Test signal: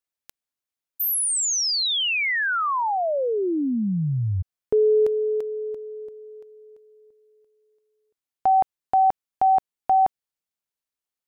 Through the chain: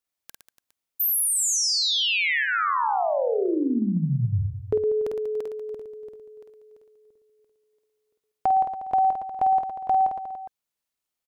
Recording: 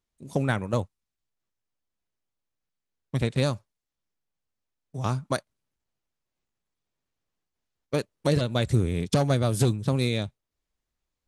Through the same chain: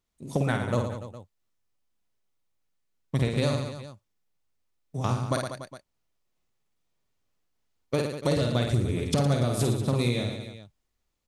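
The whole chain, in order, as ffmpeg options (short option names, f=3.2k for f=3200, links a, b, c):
-af "aecho=1:1:50|112.5|190.6|288.3|410.4:0.631|0.398|0.251|0.158|0.1,acompressor=threshold=-20dB:ratio=6:attack=5.7:release=632:knee=6:detection=rms,bandreject=f=1.6k:w=22,volume=2dB"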